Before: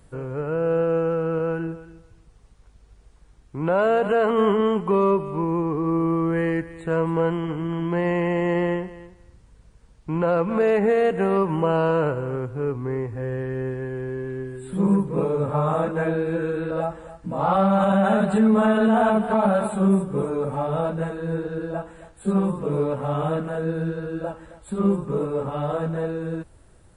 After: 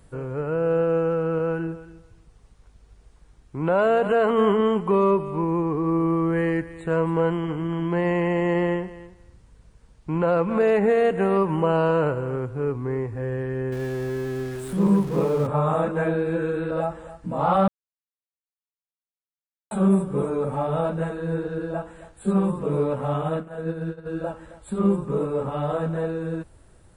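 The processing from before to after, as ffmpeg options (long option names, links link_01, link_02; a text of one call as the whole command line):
ffmpeg -i in.wav -filter_complex "[0:a]asettb=1/sr,asplit=3[link_01][link_02][link_03];[link_01]atrim=end=13.724[link_04];[link_02]atrim=start=13.72:end=15.47,asetpts=PTS-STARTPTS,afade=type=in:duration=0.004:curve=qsin,afade=type=out:start_time=1.746:duration=0.004:curve=qsin,aeval=exprs='val(0)+0.5*0.0188*sgn(val(0))':channel_layout=same[link_05];[link_03]atrim=start=15.466[link_06];[link_04][link_05]acrossfade=duration=0.004:curve1=hsin:curve2=qsin[link_07];[link_07][link_06]acrossfade=duration=0.004:curve1=qsin:curve2=hsin,asplit=3[link_08][link_09][link_10];[link_08]afade=type=out:start_time=23.17:duration=0.02[link_11];[link_09]agate=range=-33dB:threshold=-22dB:ratio=3:release=100:detection=peak,afade=type=in:start_time=23.17:duration=0.02,afade=type=out:start_time=24.05:duration=0.02[link_12];[link_10]afade=type=in:start_time=24.05:duration=0.02[link_13];[link_11][link_12][link_13]amix=inputs=3:normalize=0,asplit=3[link_14][link_15][link_16];[link_14]atrim=end=17.68,asetpts=PTS-STARTPTS,afade=type=out:start_time=17.676:duration=0.004:curve=hsin[link_17];[link_15]atrim=start=17.68:end=19.71,asetpts=PTS-STARTPTS,volume=0[link_18];[link_16]atrim=start=19.71,asetpts=PTS-STARTPTS,afade=type=in:duration=0.004:curve=hsin[link_19];[link_17][link_18][link_19]concat=n=3:v=0:a=1" out.wav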